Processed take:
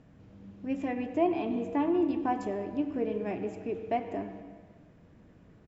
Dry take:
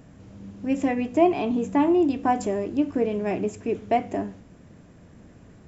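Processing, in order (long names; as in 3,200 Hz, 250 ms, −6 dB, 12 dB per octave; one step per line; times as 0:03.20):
low-pass filter 4,500 Hz 12 dB per octave
on a send: comb filter 6.3 ms + convolution reverb RT60 1.5 s, pre-delay 73 ms, DRR 8.5 dB
on the sum: level −8 dB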